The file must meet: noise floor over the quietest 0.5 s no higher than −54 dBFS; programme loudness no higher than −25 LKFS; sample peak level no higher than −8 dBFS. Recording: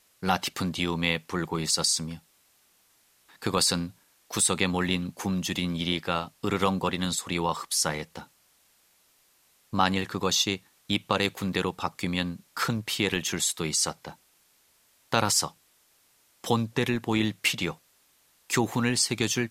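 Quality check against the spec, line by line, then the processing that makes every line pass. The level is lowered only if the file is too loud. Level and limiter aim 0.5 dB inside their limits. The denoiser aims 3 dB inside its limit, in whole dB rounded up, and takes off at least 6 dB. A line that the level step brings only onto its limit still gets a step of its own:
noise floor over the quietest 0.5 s −65 dBFS: in spec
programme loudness −27.0 LKFS: in spec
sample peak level −5.5 dBFS: out of spec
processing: brickwall limiter −8.5 dBFS

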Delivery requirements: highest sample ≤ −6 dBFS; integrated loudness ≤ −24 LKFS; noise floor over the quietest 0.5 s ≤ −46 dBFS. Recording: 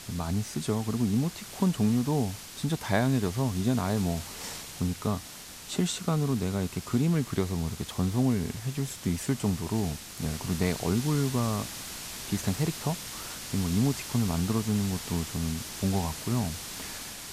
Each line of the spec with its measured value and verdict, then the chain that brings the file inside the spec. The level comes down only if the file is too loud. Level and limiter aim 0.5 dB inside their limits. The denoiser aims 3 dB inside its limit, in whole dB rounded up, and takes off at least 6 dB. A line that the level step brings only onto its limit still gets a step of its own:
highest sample −12.0 dBFS: in spec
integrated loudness −29.5 LKFS: in spec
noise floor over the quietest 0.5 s −44 dBFS: out of spec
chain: broadband denoise 6 dB, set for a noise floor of −44 dBFS

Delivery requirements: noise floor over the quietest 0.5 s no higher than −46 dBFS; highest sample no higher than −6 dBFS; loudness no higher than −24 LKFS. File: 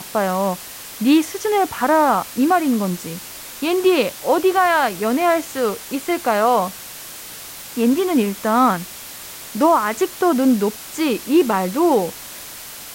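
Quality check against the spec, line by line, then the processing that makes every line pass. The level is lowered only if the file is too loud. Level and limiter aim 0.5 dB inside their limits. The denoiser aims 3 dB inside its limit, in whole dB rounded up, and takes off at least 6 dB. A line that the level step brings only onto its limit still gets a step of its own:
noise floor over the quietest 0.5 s −35 dBFS: out of spec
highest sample −5.0 dBFS: out of spec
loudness −18.5 LKFS: out of spec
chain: broadband denoise 8 dB, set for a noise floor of −35 dBFS
level −6 dB

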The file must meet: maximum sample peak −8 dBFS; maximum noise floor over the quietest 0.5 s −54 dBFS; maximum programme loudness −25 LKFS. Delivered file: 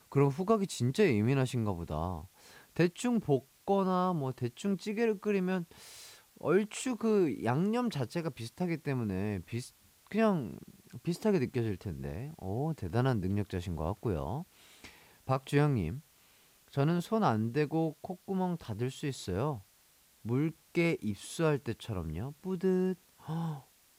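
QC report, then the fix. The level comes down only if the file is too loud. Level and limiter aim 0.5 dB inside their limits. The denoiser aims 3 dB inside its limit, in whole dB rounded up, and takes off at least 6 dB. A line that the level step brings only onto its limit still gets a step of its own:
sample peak −15.5 dBFS: in spec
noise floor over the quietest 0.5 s −65 dBFS: in spec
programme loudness −33.0 LKFS: in spec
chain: no processing needed

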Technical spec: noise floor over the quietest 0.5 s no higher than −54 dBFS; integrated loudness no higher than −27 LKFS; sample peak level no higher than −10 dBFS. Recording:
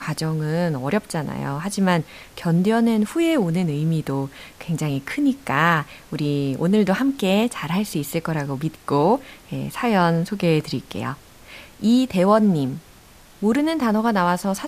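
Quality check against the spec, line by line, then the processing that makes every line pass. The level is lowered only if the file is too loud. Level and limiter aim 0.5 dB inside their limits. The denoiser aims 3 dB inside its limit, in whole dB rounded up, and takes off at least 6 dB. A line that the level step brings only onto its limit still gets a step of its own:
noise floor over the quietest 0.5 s −48 dBFS: out of spec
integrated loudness −21.5 LKFS: out of spec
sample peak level −4.5 dBFS: out of spec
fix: broadband denoise 6 dB, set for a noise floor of −48 dBFS
level −6 dB

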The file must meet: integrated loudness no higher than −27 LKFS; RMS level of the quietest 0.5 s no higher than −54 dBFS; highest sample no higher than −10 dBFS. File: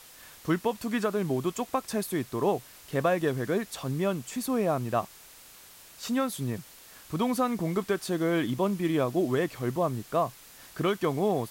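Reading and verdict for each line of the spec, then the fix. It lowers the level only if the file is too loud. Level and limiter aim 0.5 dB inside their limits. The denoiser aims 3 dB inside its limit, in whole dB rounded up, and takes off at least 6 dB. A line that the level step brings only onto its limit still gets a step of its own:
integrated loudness −29.5 LKFS: in spec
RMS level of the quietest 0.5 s −51 dBFS: out of spec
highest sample −14.5 dBFS: in spec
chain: broadband denoise 6 dB, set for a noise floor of −51 dBFS

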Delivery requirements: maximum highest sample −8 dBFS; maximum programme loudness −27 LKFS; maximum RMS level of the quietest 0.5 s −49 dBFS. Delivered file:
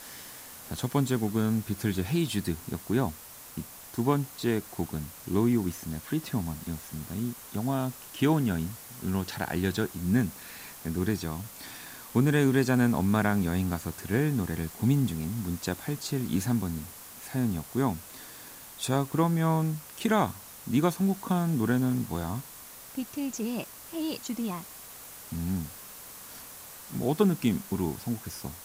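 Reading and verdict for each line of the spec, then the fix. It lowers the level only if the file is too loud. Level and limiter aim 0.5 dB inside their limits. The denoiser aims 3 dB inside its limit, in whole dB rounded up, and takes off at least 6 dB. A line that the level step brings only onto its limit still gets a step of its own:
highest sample −10.0 dBFS: in spec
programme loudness −29.5 LKFS: in spec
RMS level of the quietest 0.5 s −47 dBFS: out of spec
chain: broadband denoise 6 dB, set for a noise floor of −47 dBFS

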